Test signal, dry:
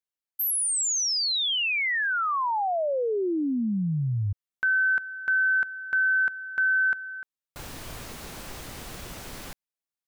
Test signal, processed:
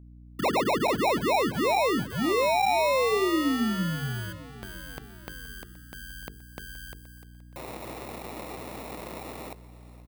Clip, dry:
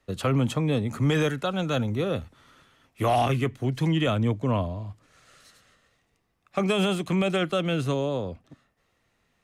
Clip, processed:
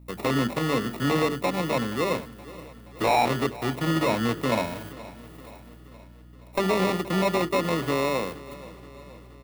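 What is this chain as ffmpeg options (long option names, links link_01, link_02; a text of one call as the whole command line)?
ffmpeg -i in.wav -filter_complex "[0:a]acrusher=samples=28:mix=1:aa=0.000001,highpass=210,bandreject=frequency=50:width_type=h:width=6,bandreject=frequency=100:width_type=h:width=6,bandreject=frequency=150:width_type=h:width=6,bandreject=frequency=200:width_type=h:width=6,bandreject=frequency=250:width_type=h:width=6,bandreject=frequency=300:width_type=h:width=6,bandreject=frequency=350:width_type=h:width=6,bandreject=frequency=400:width_type=h:width=6,bandreject=frequency=450:width_type=h:width=6,dynaudnorm=framelen=150:gausssize=3:maxgain=3dB,volume=14dB,asoftclip=hard,volume=-14dB,aeval=exprs='val(0)+0.00447*(sin(2*PI*60*n/s)+sin(2*PI*2*60*n/s)/2+sin(2*PI*3*60*n/s)/3+sin(2*PI*4*60*n/s)/4+sin(2*PI*5*60*n/s)/5)':channel_layout=same,acrossover=split=5600[link_01][link_02];[link_02]acompressor=threshold=-51dB:ratio=4:attack=1:release=60[link_03];[link_01][link_03]amix=inputs=2:normalize=0,aexciter=amount=3.4:drive=4.3:freq=8500,aecho=1:1:474|948|1422|1896|2370:0.119|0.0689|0.04|0.0232|0.0134" out.wav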